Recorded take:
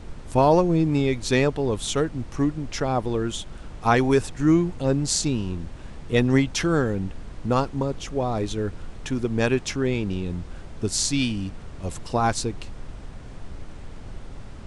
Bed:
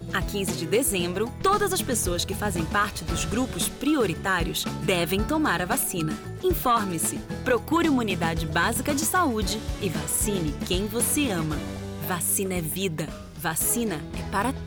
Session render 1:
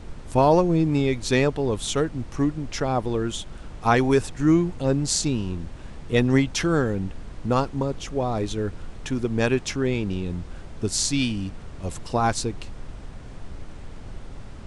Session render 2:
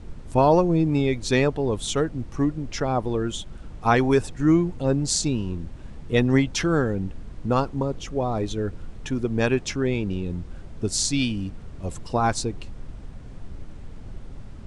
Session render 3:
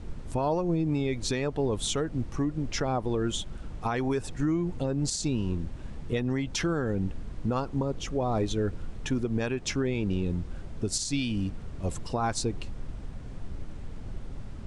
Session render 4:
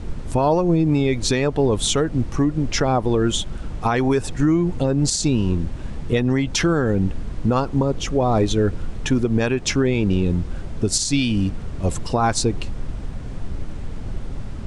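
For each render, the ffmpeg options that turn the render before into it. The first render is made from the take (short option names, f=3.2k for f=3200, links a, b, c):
-af anull
-af "afftdn=nr=6:nf=-40"
-af "acompressor=threshold=-21dB:ratio=6,alimiter=limit=-18.5dB:level=0:latency=1:release=146"
-af "volume=9.5dB"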